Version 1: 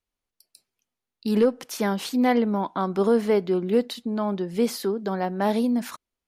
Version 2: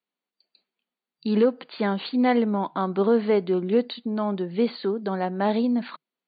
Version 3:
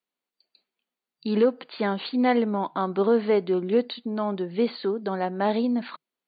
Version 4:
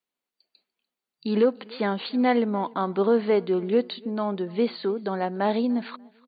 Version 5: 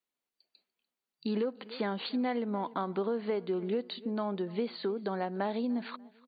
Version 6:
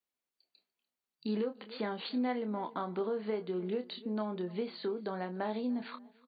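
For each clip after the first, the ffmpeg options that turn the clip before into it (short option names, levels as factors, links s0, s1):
-af "afftfilt=real='re*between(b*sr/4096,160,4700)':imag='im*between(b*sr/4096,160,4700)':win_size=4096:overlap=0.75"
-af "equalizer=f=190:t=o:w=0.76:g=-3"
-af "aecho=1:1:294|588:0.0631|0.0164"
-af "acompressor=threshold=0.0562:ratio=6,volume=0.668"
-filter_complex "[0:a]asplit=2[s0][s1];[s1]adelay=28,volume=0.398[s2];[s0][s2]amix=inputs=2:normalize=0,volume=0.668"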